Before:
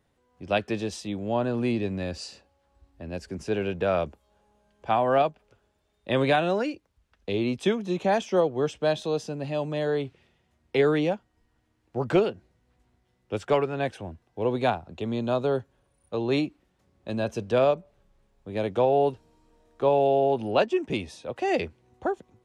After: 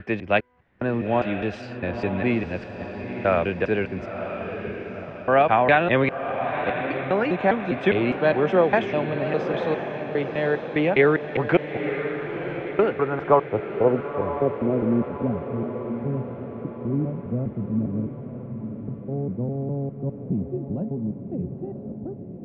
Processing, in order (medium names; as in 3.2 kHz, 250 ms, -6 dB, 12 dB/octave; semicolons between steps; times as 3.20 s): slices played last to first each 203 ms, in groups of 4; low-pass sweep 2.1 kHz -> 190 Hz, 12.58–15.46 s; echo that smears into a reverb 980 ms, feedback 54%, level -8 dB; trim +3 dB